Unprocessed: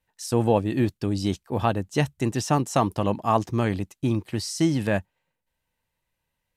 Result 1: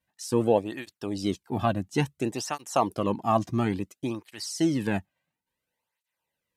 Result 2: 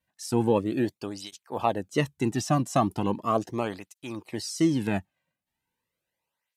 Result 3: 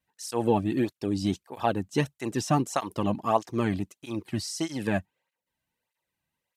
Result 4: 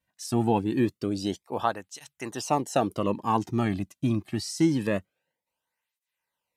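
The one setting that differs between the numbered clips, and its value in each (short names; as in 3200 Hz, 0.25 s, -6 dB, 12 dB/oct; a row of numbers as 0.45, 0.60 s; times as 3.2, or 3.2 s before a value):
tape flanging out of phase, nulls at: 0.58, 0.38, 1.6, 0.25 Hz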